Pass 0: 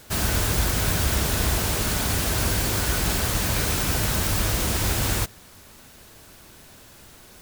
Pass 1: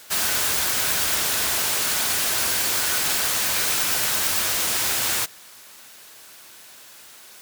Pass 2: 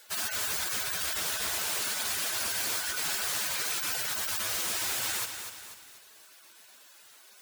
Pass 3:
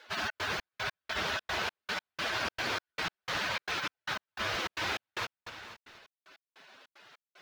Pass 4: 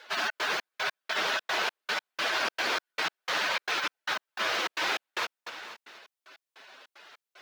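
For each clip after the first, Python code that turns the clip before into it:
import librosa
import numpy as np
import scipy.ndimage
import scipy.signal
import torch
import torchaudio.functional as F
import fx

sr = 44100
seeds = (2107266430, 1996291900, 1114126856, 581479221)

y1 = fx.highpass(x, sr, hz=1400.0, slope=6)
y1 = F.gain(torch.from_numpy(y1), 5.0).numpy()
y2 = fx.spec_gate(y1, sr, threshold_db=-10, keep='strong')
y2 = fx.echo_crushed(y2, sr, ms=244, feedback_pct=55, bits=7, wet_db=-7.5)
y2 = F.gain(torch.from_numpy(y2), -7.5).numpy()
y3 = fx.step_gate(y2, sr, bpm=151, pattern='xxx.xx..x..', floor_db=-60.0, edge_ms=4.5)
y3 = fx.air_absorb(y3, sr, metres=260.0)
y3 = F.gain(torch.from_numpy(y3), 6.5).numpy()
y4 = scipy.signal.sosfilt(scipy.signal.butter(2, 330.0, 'highpass', fs=sr, output='sos'), y3)
y4 = F.gain(torch.from_numpy(y4), 4.5).numpy()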